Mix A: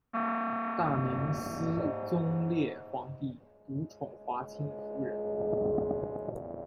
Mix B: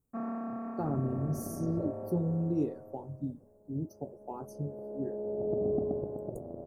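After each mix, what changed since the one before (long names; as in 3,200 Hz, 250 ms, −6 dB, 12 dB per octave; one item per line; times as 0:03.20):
master: add drawn EQ curve 440 Hz 0 dB, 3,400 Hz −27 dB, 7,400 Hz +8 dB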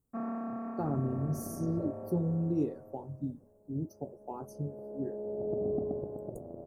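second sound: send off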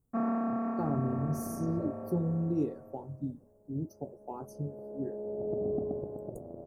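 first sound +6.0 dB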